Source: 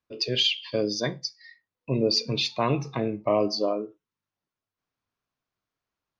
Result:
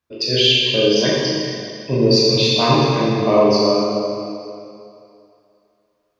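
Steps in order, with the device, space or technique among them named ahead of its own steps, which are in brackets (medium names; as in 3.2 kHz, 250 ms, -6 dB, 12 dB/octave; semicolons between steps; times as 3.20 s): tunnel (flutter echo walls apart 6.6 m, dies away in 0.27 s; reverberation RT60 2.6 s, pre-delay 10 ms, DRR -5.5 dB); trim +3.5 dB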